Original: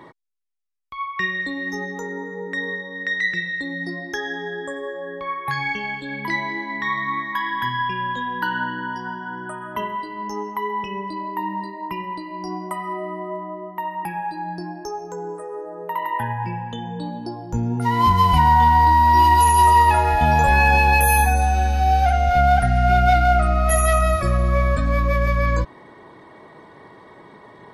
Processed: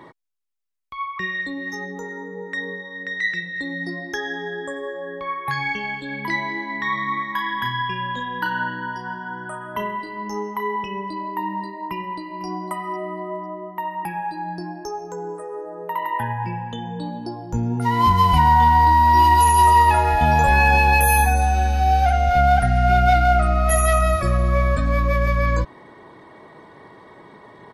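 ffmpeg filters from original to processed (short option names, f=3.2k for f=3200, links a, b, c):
-filter_complex "[0:a]asettb=1/sr,asplit=3[a][b][c];[a]atrim=end=1.184[d];[b]atrim=start=1.18:end=3.56,asetpts=PTS-STARTPTS,afade=t=in:d=0.004:c=qsin,afade=t=out:st=2.376:d=0.004:c=qsin,acrossover=split=760[e][f];[e]aeval=exprs='val(0)*(1-0.5/2+0.5/2*cos(2*PI*2.6*n/s))':c=same[g];[f]aeval=exprs='val(0)*(1-0.5/2-0.5/2*cos(2*PI*2.6*n/s))':c=same[h];[g][h]amix=inputs=2:normalize=0[i];[c]atrim=start=3.556[j];[d][i]acrossfade=d=0.004:c1=hsin:c2=qsin[k];[k][j]acrossfade=d=0.004:c1=qsin:c2=hsin,asettb=1/sr,asplit=3[l][m][n];[l]atrim=end=6.894[o];[m]atrim=start=6.89:end=10.76,asetpts=PTS-STARTPTS,afade=t=in:d=0.004:c=qsin,afade=t=out:st=3.866:d=0.004:c=qsin,asplit=2[p][q];[q]adelay=34,volume=-7dB[r];[p][r]amix=inputs=2:normalize=0,atrim=end_sample=170667[s];[n]atrim=start=10.756[t];[o][s]acrossfade=d=0.004:c1=hsin:c2=qsin[u];[u][t]acrossfade=d=0.004:c1=qsin:c2=hsin,asplit=2[v][w];[w]afade=t=in:st=11.77:d=0.01,afade=t=out:st=12.46:d=0.01,aecho=0:1:500|1000:0.16788|0.0335761[x];[v][x]amix=inputs=2:normalize=0"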